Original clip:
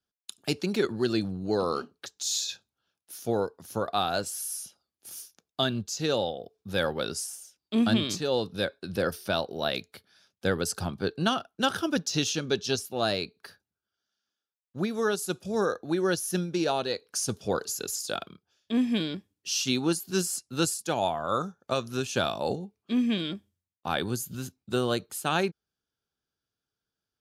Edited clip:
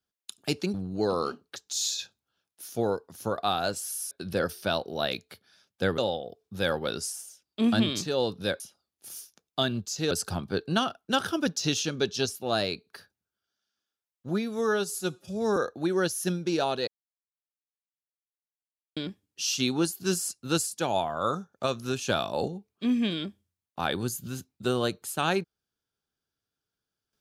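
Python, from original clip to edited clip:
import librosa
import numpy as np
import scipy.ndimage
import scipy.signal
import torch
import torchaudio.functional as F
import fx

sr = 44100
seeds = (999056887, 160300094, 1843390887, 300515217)

y = fx.edit(x, sr, fx.cut(start_s=0.74, length_s=0.5),
    fx.swap(start_s=4.61, length_s=1.51, other_s=8.74, other_length_s=1.87),
    fx.stretch_span(start_s=14.79, length_s=0.85, factor=1.5),
    fx.silence(start_s=16.95, length_s=2.09), tone=tone)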